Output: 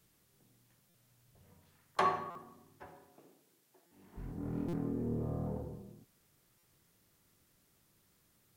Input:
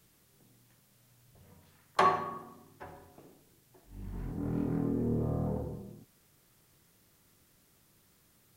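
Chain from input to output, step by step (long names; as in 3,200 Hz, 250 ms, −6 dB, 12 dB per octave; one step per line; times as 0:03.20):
0:02.86–0:04.16: high-pass filter 140 Hz → 350 Hz 12 dB per octave
buffer that repeats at 0:00.89/0:02.30/0:03.86/0:04.68/0:06.58, samples 256, times 8
level −5 dB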